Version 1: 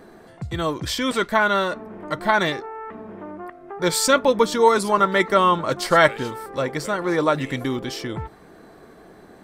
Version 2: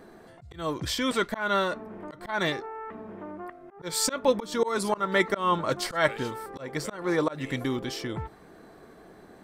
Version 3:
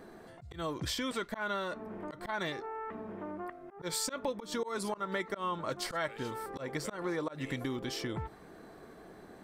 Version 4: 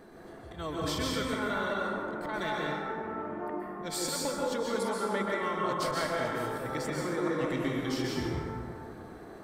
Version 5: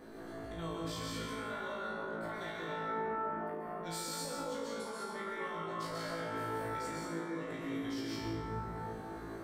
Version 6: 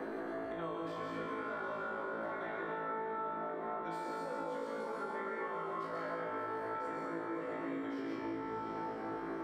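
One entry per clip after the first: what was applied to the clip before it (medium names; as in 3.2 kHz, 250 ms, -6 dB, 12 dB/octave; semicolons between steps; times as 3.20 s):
slow attack 196 ms; trim -4 dB
compression 5:1, threshold -31 dBFS, peak gain reduction 13 dB; trim -1.5 dB
plate-style reverb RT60 2.3 s, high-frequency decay 0.4×, pre-delay 115 ms, DRR -4 dB; trim -1 dB
peak limiter -25 dBFS, peak gain reduction 7.5 dB; compression 4:1, threshold -40 dBFS, peak gain reduction 9 dB; on a send: flutter echo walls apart 3.1 m, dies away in 0.57 s; on the sum: trim -2.5 dB
three-band isolator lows -15 dB, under 240 Hz, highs -21 dB, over 2.3 kHz; echo that smears into a reverb 622 ms, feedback 45%, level -8.5 dB; three bands compressed up and down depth 100%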